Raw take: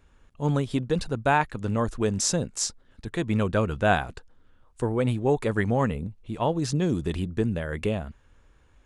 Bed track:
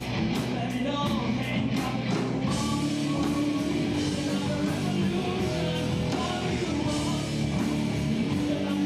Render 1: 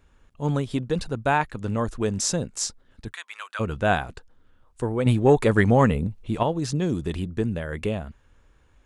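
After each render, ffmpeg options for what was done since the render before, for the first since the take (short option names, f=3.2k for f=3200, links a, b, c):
-filter_complex "[0:a]asplit=3[a][b][c];[a]afade=t=out:st=3.11:d=0.02[d];[b]highpass=f=1.1k:w=0.5412,highpass=f=1.1k:w=1.3066,afade=t=in:st=3.11:d=0.02,afade=t=out:st=3.59:d=0.02[e];[c]afade=t=in:st=3.59:d=0.02[f];[d][e][f]amix=inputs=3:normalize=0,asettb=1/sr,asplit=3[g][h][i];[g]atrim=end=5.064[j];[h]atrim=start=5.06:end=6.43,asetpts=PTS-STARTPTS,afade=t=in:d=0.004:c=qsin,afade=t=out:st=1.366:d=0.004:c=qsin,acontrast=68[k];[i]atrim=start=6.426[l];[j][k]acrossfade=d=0.004:c1=hsin:c2=qsin[m];[m][l]acrossfade=d=0.004:c1=qsin:c2=hsin"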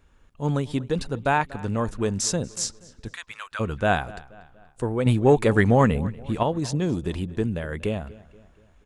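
-filter_complex "[0:a]asplit=2[a][b];[b]adelay=239,lowpass=f=4.7k:p=1,volume=-20dB,asplit=2[c][d];[d]adelay=239,lowpass=f=4.7k:p=1,volume=0.48,asplit=2[e][f];[f]adelay=239,lowpass=f=4.7k:p=1,volume=0.48,asplit=2[g][h];[h]adelay=239,lowpass=f=4.7k:p=1,volume=0.48[i];[a][c][e][g][i]amix=inputs=5:normalize=0"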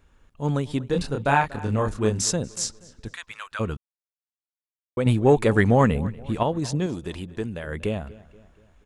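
-filter_complex "[0:a]asettb=1/sr,asplit=3[a][b][c];[a]atrim=end=0.894[d];[b]atrim=start=0.89:end=2.31,asetpts=PTS-STARTPTS,afade=t=in:d=0.004:c=qsin,afade=t=out:st=1.416:d=0.004:c=qsin,asplit=2[e][f];[f]adelay=28,volume=-3dB[g];[e][g]amix=inputs=2:normalize=0,atrim=end_sample=62622[h];[c]atrim=start=2.306[i];[d][h]acrossfade=d=0.004:c1=hsin:c2=qsin[j];[j][i]acrossfade=d=0.004:c1=qsin:c2=hsin,asettb=1/sr,asplit=3[k][l][m];[k]atrim=end=6.864[n];[l]atrim=start=6.86:end=7.67,asetpts=PTS-STARTPTS,afade=t=in:d=0.004:c=qsin,afade=t=out:st=0.806:d=0.004:c=qsin,lowshelf=f=400:g=-7[o];[m]atrim=start=7.666[p];[n][o]acrossfade=d=0.004:c1=hsin:c2=qsin[q];[q][p]acrossfade=d=0.004:c1=qsin:c2=hsin,asplit=3[r][s][t];[r]atrim=end=3.77,asetpts=PTS-STARTPTS,afade=t=out:st=3.766:d=0.004:c=hsin[u];[s]atrim=start=3.77:end=4.97,asetpts=PTS-STARTPTS,volume=0[v];[t]atrim=start=4.97,asetpts=PTS-STARTPTS,afade=t=in:d=0.004:c=hsin[w];[u][v][w]concat=n=3:v=0:a=1"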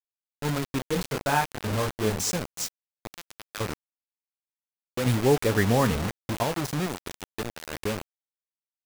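-af "flanger=delay=6.8:depth=4.3:regen=-77:speed=1.1:shape=sinusoidal,acrusher=bits=4:mix=0:aa=0.000001"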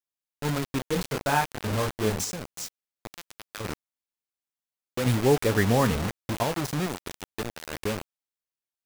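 -filter_complex "[0:a]asettb=1/sr,asplit=3[a][b][c];[a]atrim=end=2.244[d];[b]atrim=start=2.24:end=3.65,asetpts=PTS-STARTPTS,afade=t=in:d=0.004:c=qsin,afade=t=out:st=1.406:d=0.004:c=qsin,acompressor=threshold=-30dB:ratio=6:attack=3.2:release=140:knee=1:detection=peak[e];[c]atrim=start=3.646[f];[d][e]acrossfade=d=0.004:c1=hsin:c2=qsin[g];[g][f]acrossfade=d=0.004:c1=qsin:c2=hsin"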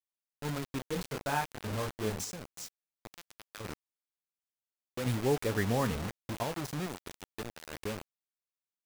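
-af "volume=-8dB"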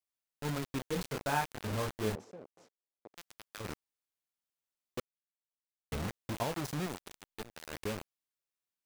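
-filter_complex "[0:a]asettb=1/sr,asplit=3[a][b][c];[a]atrim=end=2.154[d];[b]atrim=start=2.15:end=3.17,asetpts=PTS-STARTPTS,afade=t=in:d=0.004:c=qsin,afade=t=out:st=1.016:d=0.004:c=qsin,bandpass=f=460:t=q:w=1.4[e];[c]atrim=start=3.166[f];[d][e]acrossfade=d=0.004:c1=hsin:c2=qsin[g];[g][f]acrossfade=d=0.004:c1=qsin:c2=hsin,asettb=1/sr,asplit=3[h][i][j];[h]atrim=end=7.004[k];[i]atrim=start=7:end=7.53,asetpts=PTS-STARTPTS,afade=t=in:d=0.004:c=qsin,afade=t=out:st=0.526:d=0.004:c=qsin,aeval=exprs='if(lt(val(0),0),0.251*val(0),val(0))':c=same[l];[j]atrim=start=7.526[m];[k][l]acrossfade=d=0.004:c1=hsin:c2=qsin[n];[n][m]acrossfade=d=0.004:c1=qsin:c2=hsin,asplit=3[o][p][q];[o]atrim=end=5,asetpts=PTS-STARTPTS,afade=t=out:st=4.996:d=0.004:c=hsin[r];[p]atrim=start=5:end=5.92,asetpts=PTS-STARTPTS,volume=0[s];[q]atrim=start=5.92,asetpts=PTS-STARTPTS,afade=t=in:d=0.004:c=hsin[t];[r][s][t]concat=n=3:v=0:a=1"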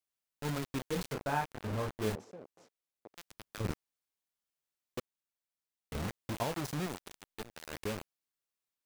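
-filter_complex "[0:a]asettb=1/sr,asplit=3[a][b][c];[a]atrim=end=1.144[d];[b]atrim=start=1.14:end=2.02,asetpts=PTS-STARTPTS,afade=t=in:d=0.004:c=qsin,afade=t=out:st=0.876:d=0.004:c=qsin,highshelf=f=2.4k:g=-8[e];[c]atrim=start=2.016[f];[d][e]acrossfade=d=0.004:c1=hsin:c2=qsin[g];[g][f]acrossfade=d=0.004:c1=qsin:c2=hsin,asettb=1/sr,asplit=3[h][i][j];[h]atrim=end=3.314[k];[i]atrim=start=3.31:end=3.72,asetpts=PTS-STARTPTS,afade=t=in:d=0.004:c=qsin,afade=t=out:st=0.406:d=0.004:c=qsin,lowshelf=f=370:g=11[l];[j]atrim=start=3.716[m];[k][l]acrossfade=d=0.004:c1=hsin:c2=qsin[n];[n][m]acrossfade=d=0.004:c1=qsin:c2=hsin,asettb=1/sr,asplit=3[o][p][q];[o]atrim=end=4.994[r];[p]atrim=start=4.99:end=5.95,asetpts=PTS-STARTPTS,afade=t=in:d=0.004:c=qsin,afade=t=out:st=0.956:d=0.004:c=qsin,acompressor=threshold=-38dB:ratio=6:attack=3.2:release=140:knee=1:detection=peak[s];[q]atrim=start=5.946[t];[r][s]acrossfade=d=0.004:c1=hsin:c2=qsin[u];[u][t]acrossfade=d=0.004:c1=qsin:c2=hsin"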